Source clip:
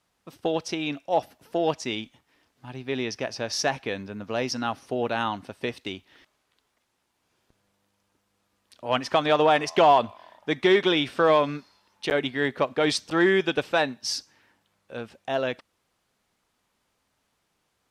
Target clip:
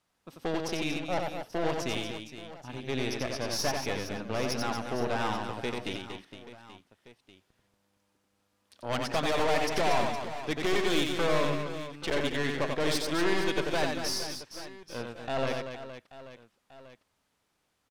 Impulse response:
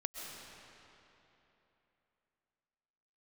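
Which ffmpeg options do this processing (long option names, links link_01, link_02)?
-filter_complex "[0:a]aeval=exprs='(tanh(20*val(0)+0.75)-tanh(0.75))/20':channel_layout=same,asplit=2[link_01][link_02];[link_02]aecho=0:1:90|234|464.4|833|1423:0.631|0.398|0.251|0.158|0.1[link_03];[link_01][link_03]amix=inputs=2:normalize=0"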